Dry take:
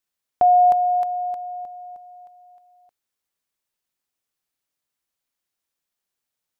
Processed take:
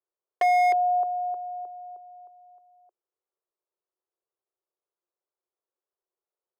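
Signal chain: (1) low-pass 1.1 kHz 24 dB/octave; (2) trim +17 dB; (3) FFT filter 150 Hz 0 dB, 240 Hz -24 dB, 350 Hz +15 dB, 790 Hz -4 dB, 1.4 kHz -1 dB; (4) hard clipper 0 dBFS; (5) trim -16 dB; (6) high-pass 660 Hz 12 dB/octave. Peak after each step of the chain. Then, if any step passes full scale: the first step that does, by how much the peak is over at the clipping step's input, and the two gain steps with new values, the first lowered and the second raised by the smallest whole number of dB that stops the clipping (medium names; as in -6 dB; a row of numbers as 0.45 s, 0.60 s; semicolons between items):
-10.5 dBFS, +6.5 dBFS, +8.5 dBFS, 0.0 dBFS, -16.0 dBFS, -14.0 dBFS; step 2, 8.5 dB; step 2 +8 dB, step 5 -7 dB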